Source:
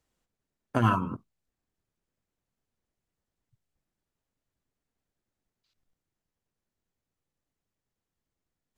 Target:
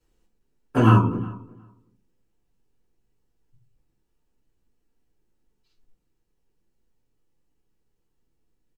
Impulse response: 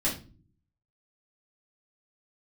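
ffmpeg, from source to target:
-filter_complex "[0:a]asplit=2[link_01][link_02];[link_02]adelay=362,lowpass=frequency=2200:poles=1,volume=-20.5dB,asplit=2[link_03][link_04];[link_04]adelay=362,lowpass=frequency=2200:poles=1,volume=0.15[link_05];[link_01][link_03][link_05]amix=inputs=3:normalize=0[link_06];[1:a]atrim=start_sample=2205,asetrate=66150,aresample=44100[link_07];[link_06][link_07]afir=irnorm=-1:irlink=0"

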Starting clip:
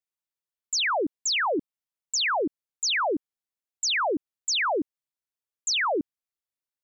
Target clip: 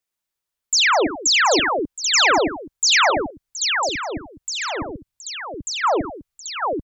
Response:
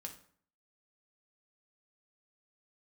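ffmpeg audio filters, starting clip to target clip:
-filter_complex "[0:a]asubboost=boost=8.5:cutoff=97,asettb=1/sr,asplit=3[link_01][link_02][link_03];[link_01]atrim=end=3.104[link_04];[link_02]atrim=start=3.1:end=5.84,asetpts=PTS-STARTPTS,afade=type=in:duration=0.004:curve=qsin,afade=type=out:start_time=2.736:duration=0.004:curve=qsin,acrossover=split=220[link_05][link_06];[link_06]acompressor=threshold=-44dB:ratio=2[link_07];[link_05][link_07]amix=inputs=2:normalize=0[link_08];[link_03]atrim=start=5.836[link_09];[link_04][link_08]acrossfade=duration=0.004:curve1=hsin:curve2=qsin[link_10];[link_10][link_09]acrossfade=duration=0.004:curve1=qsin:curve2=hsin,aecho=1:1:41|87|90|201|721|786:0.224|0.178|0.106|0.158|0.211|0.596,volume=8.5dB"

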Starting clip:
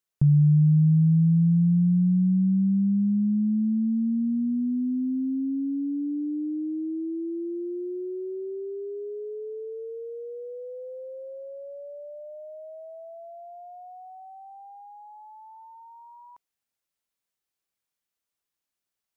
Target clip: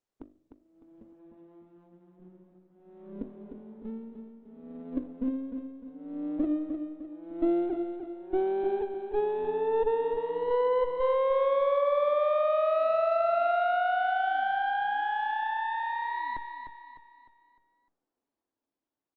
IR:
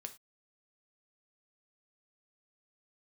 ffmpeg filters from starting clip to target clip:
-af "afftfilt=real='re*lt(hypot(re,im),0.178)':imag='im*lt(hypot(re,im),0.178)':win_size=1024:overlap=0.75,asuperpass=centerf=470:order=12:qfactor=0.56,bandreject=frequency=50:width_type=h:width=6,bandreject=frequency=100:width_type=h:width=6,bandreject=frequency=150:width_type=h:width=6,bandreject=frequency=200:width_type=h:width=6,bandreject=frequency=250:width_type=h:width=6,bandreject=frequency=300:width_type=h:width=6,bandreject=frequency=350:width_type=h:width=6,bandreject=frequency=400:width_type=h:width=6,alimiter=level_in=16dB:limit=-24dB:level=0:latency=1:release=397,volume=-16dB,dynaudnorm=framelen=410:gausssize=9:maxgain=12.5dB,aresample=8000,aeval=exprs='max(val(0),0)':channel_layout=same,aresample=44100,aeval=exprs='0.0447*(cos(1*acos(clip(val(0)/0.0447,-1,1)))-cos(1*PI/2))+0.00282*(cos(2*acos(clip(val(0)/0.0447,-1,1)))-cos(2*PI/2))+0.00126*(cos(3*acos(clip(val(0)/0.0447,-1,1)))-cos(3*PI/2))':channel_layout=same,equalizer=frequency=290:width=2:gain=10.5,aecho=1:1:303|606|909|1212|1515:0.398|0.163|0.0669|0.0274|0.0112,volume=8dB" -ar 48000 -c:a libopus -b:a 24k

